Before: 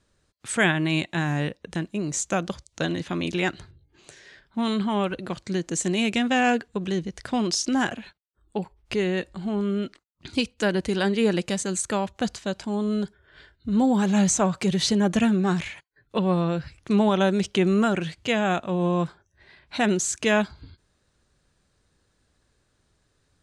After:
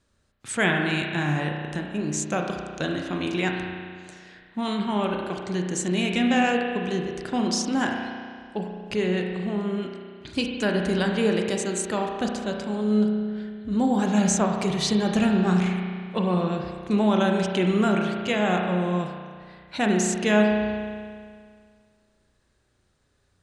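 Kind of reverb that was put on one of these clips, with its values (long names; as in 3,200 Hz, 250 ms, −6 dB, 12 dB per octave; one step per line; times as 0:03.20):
spring reverb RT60 2 s, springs 33 ms, chirp 45 ms, DRR 1.5 dB
level −2 dB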